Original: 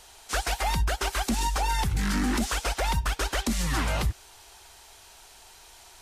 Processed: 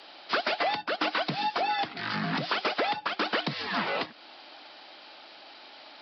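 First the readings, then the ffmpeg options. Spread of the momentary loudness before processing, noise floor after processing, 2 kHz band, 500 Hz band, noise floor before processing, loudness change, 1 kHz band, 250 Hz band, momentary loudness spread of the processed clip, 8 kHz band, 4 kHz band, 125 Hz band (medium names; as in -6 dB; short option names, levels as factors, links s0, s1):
3 LU, -50 dBFS, +1.5 dB, +3.0 dB, -52 dBFS, -1.5 dB, +1.0 dB, -5.0 dB, 19 LU, under -25 dB, +1.0 dB, -11.5 dB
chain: -af "aresample=11025,aresample=44100,afreqshift=-84,acompressor=threshold=0.0398:ratio=2.5,highpass=f=200:w=0.5412,highpass=f=200:w=1.3066,volume=1.78"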